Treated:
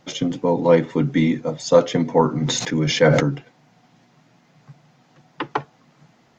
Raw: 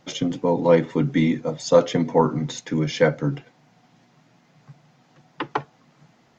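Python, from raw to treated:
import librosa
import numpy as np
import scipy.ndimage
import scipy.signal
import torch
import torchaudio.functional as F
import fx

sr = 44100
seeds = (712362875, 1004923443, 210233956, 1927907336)

y = fx.sustainer(x, sr, db_per_s=32.0, at=(2.41, 3.23), fade=0.02)
y = F.gain(torch.from_numpy(y), 1.5).numpy()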